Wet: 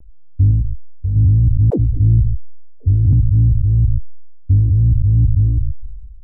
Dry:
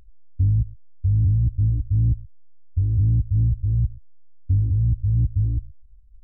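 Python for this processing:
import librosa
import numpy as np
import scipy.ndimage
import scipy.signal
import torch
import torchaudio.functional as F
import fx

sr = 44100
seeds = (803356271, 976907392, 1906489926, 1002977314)

p1 = fx.wiener(x, sr, points=15)
p2 = fx.env_lowpass(p1, sr, base_hz=440.0, full_db=-15.0)
p3 = fx.peak_eq(p2, sr, hz=100.0, db=-7.5, octaves=1.2, at=(0.51, 1.16))
p4 = fx.dispersion(p3, sr, late='lows', ms=100.0, hz=310.0, at=(1.7, 3.13))
p5 = 10.0 ** (-14.5 / 20.0) * np.tanh(p4 / 10.0 ** (-14.5 / 20.0))
p6 = p4 + F.gain(torch.from_numpy(p5), -3.5).numpy()
p7 = fx.vibrato(p6, sr, rate_hz=0.72, depth_cents=26.0)
p8 = fx.sustainer(p7, sr, db_per_s=39.0)
y = F.gain(torch.from_numpy(p8), 3.0).numpy()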